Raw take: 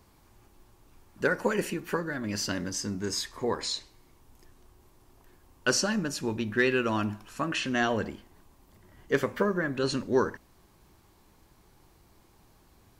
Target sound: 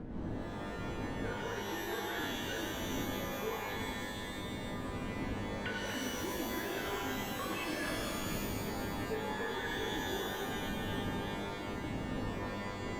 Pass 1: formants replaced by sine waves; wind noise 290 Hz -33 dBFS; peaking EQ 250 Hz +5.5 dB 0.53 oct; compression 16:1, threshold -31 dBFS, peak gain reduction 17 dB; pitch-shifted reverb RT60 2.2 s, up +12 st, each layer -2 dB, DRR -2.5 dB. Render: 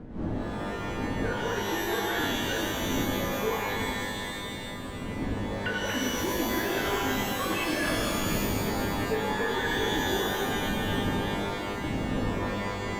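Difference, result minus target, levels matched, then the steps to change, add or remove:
compression: peak gain reduction -9.5 dB
change: compression 16:1, threshold -41 dBFS, peak gain reduction 26 dB

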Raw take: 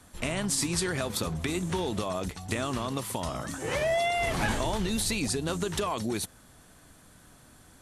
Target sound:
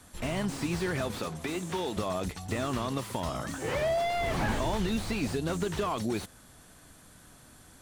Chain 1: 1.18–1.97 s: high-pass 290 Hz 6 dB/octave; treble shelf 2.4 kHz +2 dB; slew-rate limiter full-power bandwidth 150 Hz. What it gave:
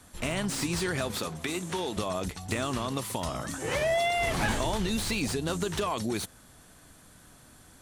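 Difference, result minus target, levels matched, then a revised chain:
slew-rate limiter: distortion -6 dB
1.18–1.97 s: high-pass 290 Hz 6 dB/octave; treble shelf 2.4 kHz +2 dB; slew-rate limiter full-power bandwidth 45.5 Hz

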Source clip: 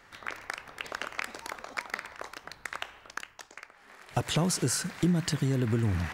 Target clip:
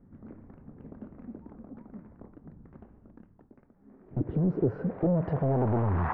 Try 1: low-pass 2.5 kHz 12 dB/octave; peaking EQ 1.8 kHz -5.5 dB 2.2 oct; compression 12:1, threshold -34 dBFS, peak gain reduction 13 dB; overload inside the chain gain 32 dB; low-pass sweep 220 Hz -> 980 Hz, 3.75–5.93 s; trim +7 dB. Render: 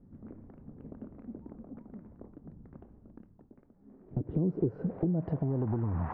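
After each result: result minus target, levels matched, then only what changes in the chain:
compression: peak gain reduction +13 dB; 2 kHz band -7.5 dB
remove: compression 12:1, threshold -34 dBFS, peak gain reduction 13 dB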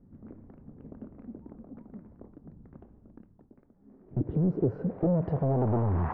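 2 kHz band -7.0 dB
change: peaking EQ 1.8 kHz +2.5 dB 2.2 oct

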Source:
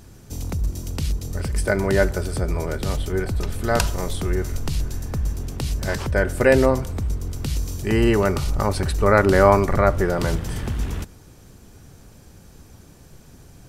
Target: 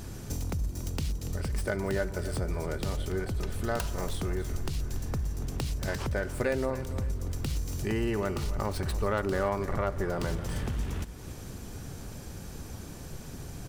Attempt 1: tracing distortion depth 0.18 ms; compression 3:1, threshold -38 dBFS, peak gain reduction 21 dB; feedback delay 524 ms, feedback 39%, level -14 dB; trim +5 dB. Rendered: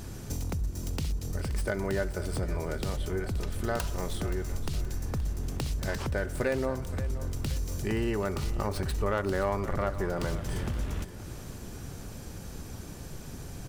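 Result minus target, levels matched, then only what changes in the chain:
echo 240 ms late
change: feedback delay 284 ms, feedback 39%, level -14 dB

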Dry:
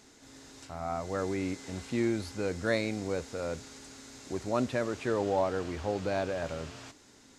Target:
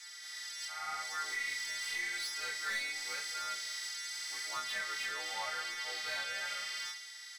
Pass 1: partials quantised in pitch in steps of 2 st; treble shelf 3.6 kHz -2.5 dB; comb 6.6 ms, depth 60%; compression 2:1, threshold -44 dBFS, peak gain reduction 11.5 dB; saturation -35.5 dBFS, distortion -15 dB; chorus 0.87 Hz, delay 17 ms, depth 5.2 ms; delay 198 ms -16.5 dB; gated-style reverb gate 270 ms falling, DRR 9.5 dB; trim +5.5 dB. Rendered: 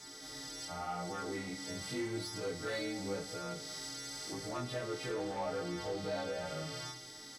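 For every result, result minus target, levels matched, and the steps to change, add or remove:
2 kHz band -7.0 dB; compression: peak gain reduction +3.5 dB
add after partials quantised in pitch: resonant high-pass 1.9 kHz, resonance Q 2.1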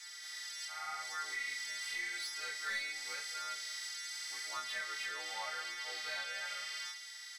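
compression: peak gain reduction +4 dB
change: compression 2:1, threshold -36.5 dBFS, peak gain reduction 8 dB

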